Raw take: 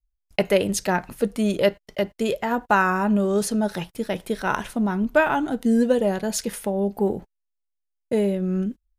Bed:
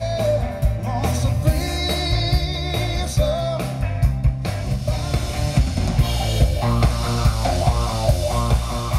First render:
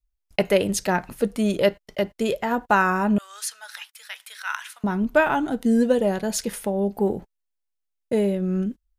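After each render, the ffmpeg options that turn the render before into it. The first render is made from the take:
-filter_complex "[0:a]asettb=1/sr,asplit=3[a][b][c];[a]atrim=end=3.184[d];[b]atrim=start=3.18:end=4.84,asetpts=PTS-STARTPTS,afade=t=in:d=0.004:c=qsin,afade=t=out:st=1.656:d=0.004:c=qsin,highpass=f=1.3k:w=0.5412,highpass=f=1.3k:w=1.3066[e];[c]atrim=start=4.836[f];[d][e]acrossfade=d=0.004:c1=hsin:c2=qsin[g];[g][f]acrossfade=d=0.004:c1=qsin:c2=hsin"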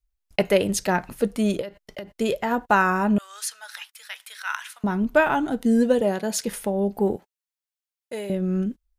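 -filter_complex "[0:a]asplit=3[a][b][c];[a]afade=t=out:st=1.6:d=0.02[d];[b]acompressor=threshold=-30dB:ratio=12:attack=3.2:release=140:knee=1:detection=peak,afade=t=in:st=1.6:d=0.02,afade=t=out:st=2.07:d=0.02[e];[c]afade=t=in:st=2.07:d=0.02[f];[d][e][f]amix=inputs=3:normalize=0,asettb=1/sr,asplit=3[g][h][i];[g]atrim=end=6.014[j];[h]atrim=start=6.01:end=6.45,asetpts=PTS-STARTPTS,afade=t=in:d=0.004:c=qsin,afade=t=out:st=0.436:d=0.004:c=qsin,highpass=170[k];[i]atrim=start=6.446[l];[j][k]acrossfade=d=0.004:c1=hsin:c2=qsin[m];[m][l]acrossfade=d=0.004:c1=qsin:c2=hsin,asettb=1/sr,asplit=3[n][o][p];[n]atrim=end=7.164[q];[o]atrim=start=7.16:end=8.3,asetpts=PTS-STARTPTS,afade=t=in:d=0.004:c=qsin,afade=t=out:st=1.136:d=0.004:c=qsin,highpass=f=1.3k:p=1[r];[p]atrim=start=8.296[s];[q][r]acrossfade=d=0.004:c1=hsin:c2=qsin[t];[t][s]acrossfade=d=0.004:c1=qsin:c2=hsin"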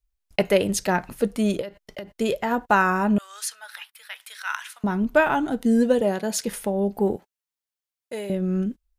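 -filter_complex "[0:a]asettb=1/sr,asplit=3[a][b][c];[a]atrim=end=3.554[d];[b]atrim=start=3.55:end=4.21,asetpts=PTS-STARTPTS,afade=t=in:d=0.004:c=qsin,afade=t=out:st=0.656:d=0.004:c=qsin,equalizer=f=6.4k:t=o:w=0.86:g=-10[e];[c]atrim=start=4.206[f];[d][e]acrossfade=d=0.004:c1=hsin:c2=qsin[g];[g][f]acrossfade=d=0.004:c1=qsin:c2=hsin"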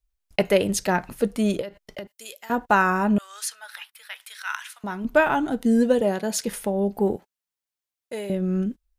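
-filter_complex "[0:a]asettb=1/sr,asplit=3[a][b][c];[a]atrim=end=2.074[d];[b]atrim=start=2.07:end=2.5,asetpts=PTS-STARTPTS,afade=t=in:d=0.004:c=qsin,afade=t=out:st=0.426:d=0.004:c=qsin,aderivative[e];[c]atrim=start=2.496[f];[d][e]acrossfade=d=0.004:c1=hsin:c2=qsin[g];[g][f]acrossfade=d=0.004:c1=qsin:c2=hsin,asettb=1/sr,asplit=3[h][i][j];[h]atrim=end=4.254[k];[i]atrim=start=4.25:end=5.05,asetpts=PTS-STARTPTS,afade=t=in:d=0.004:c=qsin,afade=t=out:st=0.796:d=0.004:c=qsin,lowshelf=f=480:g=-11[l];[j]atrim=start=5.046[m];[k][l]acrossfade=d=0.004:c1=hsin:c2=qsin[n];[n][m]acrossfade=d=0.004:c1=qsin:c2=hsin"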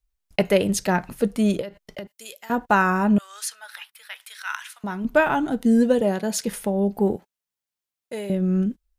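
-af "equalizer=f=170:t=o:w=0.97:g=3.5"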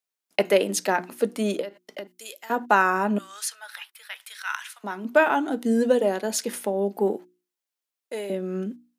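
-af "highpass=f=250:w=0.5412,highpass=f=250:w=1.3066,bandreject=f=60:t=h:w=6,bandreject=f=120:t=h:w=6,bandreject=f=180:t=h:w=6,bandreject=f=240:t=h:w=6,bandreject=f=300:t=h:w=6,bandreject=f=360:t=h:w=6"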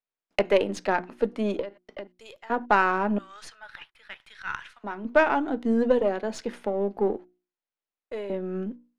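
-af "aeval=exprs='if(lt(val(0),0),0.708*val(0),val(0))':c=same,adynamicsmooth=sensitivity=0.5:basefreq=3k"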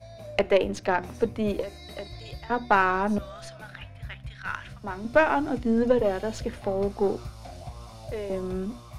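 -filter_complex "[1:a]volume=-22dB[a];[0:a][a]amix=inputs=2:normalize=0"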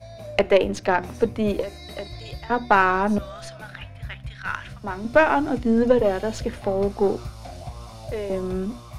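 -af "volume=4dB,alimiter=limit=-3dB:level=0:latency=1"

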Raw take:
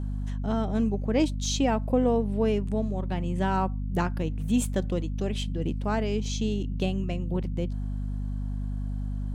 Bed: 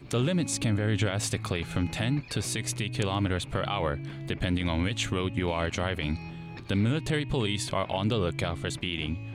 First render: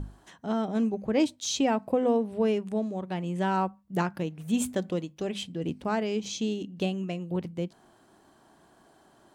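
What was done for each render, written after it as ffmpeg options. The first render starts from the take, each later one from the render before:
-af "bandreject=f=50:t=h:w=6,bandreject=f=100:t=h:w=6,bandreject=f=150:t=h:w=6,bandreject=f=200:t=h:w=6,bandreject=f=250:t=h:w=6"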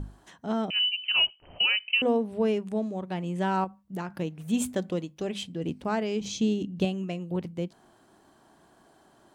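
-filter_complex "[0:a]asettb=1/sr,asplit=3[a][b][c];[a]atrim=end=0.704[d];[b]atrim=start=0.7:end=2.02,asetpts=PTS-STARTPTS,afade=t=in:d=0.004:c=qsin,afade=t=out:st=1.316:d=0.004:c=qsin,lowpass=f=2.7k:t=q:w=0.5098,lowpass=f=2.7k:t=q:w=0.6013,lowpass=f=2.7k:t=q:w=0.9,lowpass=f=2.7k:t=q:w=2.563,afreqshift=-3200[e];[c]atrim=start=2.016[f];[d][e]acrossfade=d=0.004:c1=hsin:c2=qsin[g];[g][f]acrossfade=d=0.004:c1=qsin:c2=hsin,asettb=1/sr,asplit=3[h][i][j];[h]atrim=end=3.644[k];[i]atrim=start=3.64:end=4.1,asetpts=PTS-STARTPTS,afade=t=in:d=0.004:c=qsin,afade=t=out:st=0.456:d=0.004:c=qsin,acompressor=threshold=-32dB:ratio=3:attack=3.2:release=140:knee=1:detection=peak[l];[j]atrim=start=4.096[m];[k][l]acrossfade=d=0.004:c1=hsin:c2=qsin[n];[n][m]acrossfade=d=0.004:c1=qsin:c2=hsin,asettb=1/sr,asplit=3[o][p][q];[o]atrim=end=6.214[r];[p]atrim=start=6.21:end=6.85,asetpts=PTS-STARTPTS,afade=t=in:d=0.004:c=qsin,afade=t=out:st=0.636:d=0.004:c=qsin,lowshelf=f=210:g=10[s];[q]atrim=start=6.846[t];[r][s]acrossfade=d=0.004:c1=hsin:c2=qsin[u];[u][t]acrossfade=d=0.004:c1=qsin:c2=hsin"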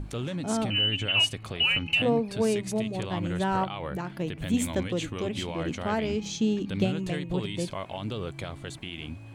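-filter_complex "[1:a]volume=-6.5dB[a];[0:a][a]amix=inputs=2:normalize=0"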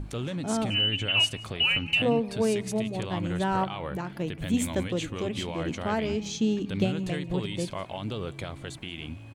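-af "aecho=1:1:178:0.0841"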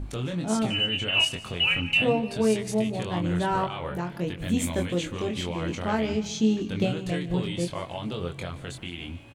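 -filter_complex "[0:a]asplit=2[a][b];[b]adelay=23,volume=-4dB[c];[a][c]amix=inputs=2:normalize=0,aecho=1:1:149|298|447|596:0.112|0.055|0.0269|0.0132"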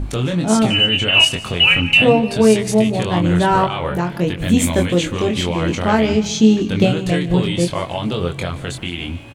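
-af "volume=11dB,alimiter=limit=-1dB:level=0:latency=1"

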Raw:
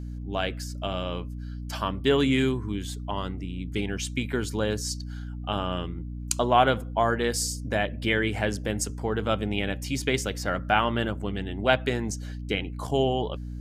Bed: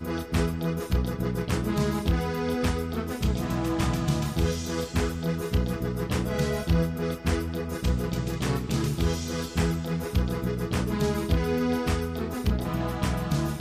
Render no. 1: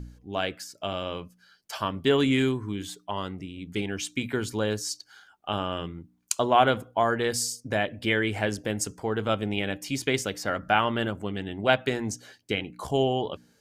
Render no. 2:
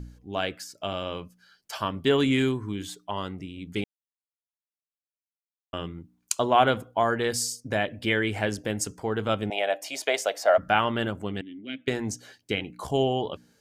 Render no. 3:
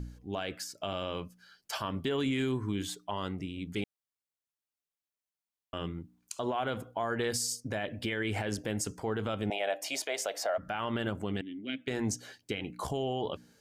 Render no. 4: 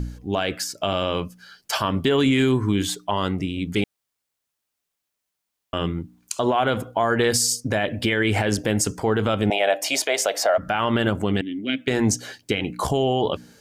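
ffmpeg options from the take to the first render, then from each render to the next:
-af "bandreject=f=60:t=h:w=4,bandreject=f=120:t=h:w=4,bandreject=f=180:t=h:w=4,bandreject=f=240:t=h:w=4,bandreject=f=300:t=h:w=4"
-filter_complex "[0:a]asettb=1/sr,asplit=3[a][b][c];[a]atrim=end=9.504[d];[b]atrim=start=9.5:end=10.58,asetpts=PTS-STARTPTS,afade=t=in:d=0.004:c=qsin,afade=t=out:st=1.076:d=0.004:c=qsin,highpass=f=650:t=q:w=7[e];[c]atrim=start=10.576[f];[d][e]acrossfade=d=0.004:c1=hsin:c2=qsin[g];[g][f]acrossfade=d=0.004:c1=qsin:c2=hsin,asettb=1/sr,asplit=3[h][i][j];[h]atrim=end=11.414[k];[i]atrim=start=11.41:end=11.88,asetpts=PTS-STARTPTS,afade=t=in:d=0.004:c=qsin,afade=t=out:st=0.466:d=0.004:c=qsin,asplit=3[l][m][n];[l]bandpass=f=270:t=q:w=8,volume=0dB[o];[m]bandpass=f=2.29k:t=q:w=8,volume=-6dB[p];[n]bandpass=f=3.01k:t=q:w=8,volume=-9dB[q];[o][p][q]amix=inputs=3:normalize=0[r];[j]atrim=start=11.876[s];[k][r]acrossfade=d=0.004:c1=hsin:c2=qsin[t];[t][s]acrossfade=d=0.004:c1=qsin:c2=hsin,asplit=3[u][v][w];[u]atrim=end=3.84,asetpts=PTS-STARTPTS,afade=t=out:st=3.836:d=0.004:c=hsin[x];[v]atrim=start=3.84:end=5.73,asetpts=PTS-STARTPTS,volume=0[y];[w]atrim=start=5.73,asetpts=PTS-STARTPTS,afade=t=in:d=0.004:c=hsin[z];[x][y][z]concat=n=3:v=0:a=1"
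-af "acompressor=threshold=-24dB:ratio=6,alimiter=limit=-22.5dB:level=0:latency=1:release=55"
-af "volume=12dB"

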